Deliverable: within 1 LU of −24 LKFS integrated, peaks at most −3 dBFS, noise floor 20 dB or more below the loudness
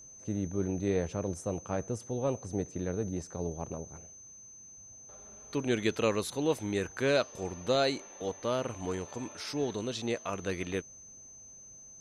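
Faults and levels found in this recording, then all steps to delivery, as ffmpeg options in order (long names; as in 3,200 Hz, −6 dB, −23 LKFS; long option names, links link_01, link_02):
interfering tone 6,200 Hz; level of the tone −49 dBFS; integrated loudness −33.5 LKFS; sample peak −14.5 dBFS; target loudness −24.0 LKFS
→ -af "bandreject=frequency=6200:width=30"
-af "volume=9.5dB"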